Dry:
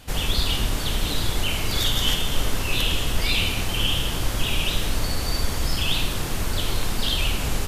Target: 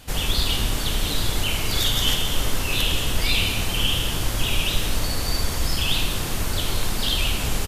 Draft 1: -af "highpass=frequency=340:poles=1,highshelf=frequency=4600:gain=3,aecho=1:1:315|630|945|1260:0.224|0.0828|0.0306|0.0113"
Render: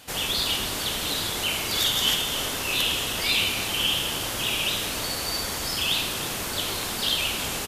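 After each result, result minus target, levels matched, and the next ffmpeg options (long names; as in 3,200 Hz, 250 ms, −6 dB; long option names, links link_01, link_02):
echo 139 ms late; 250 Hz band −4.0 dB
-af "highpass=frequency=340:poles=1,highshelf=frequency=4600:gain=3,aecho=1:1:176|352|528|704:0.224|0.0828|0.0306|0.0113"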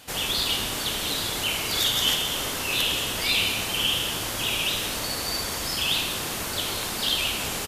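250 Hz band −4.0 dB
-af "highshelf=frequency=4600:gain=3,aecho=1:1:176|352|528|704:0.224|0.0828|0.0306|0.0113"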